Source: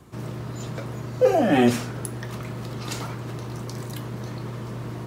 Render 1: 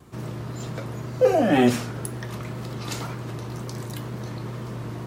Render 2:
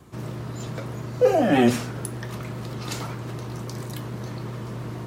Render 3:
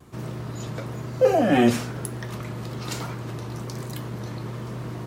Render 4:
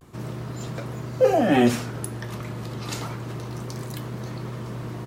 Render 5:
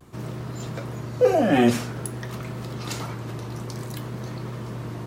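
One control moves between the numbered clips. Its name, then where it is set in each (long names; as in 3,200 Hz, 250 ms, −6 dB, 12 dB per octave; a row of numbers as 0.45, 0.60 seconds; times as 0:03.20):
pitch vibrato, speed: 2, 7.1, 1.1, 0.3, 0.53 Hertz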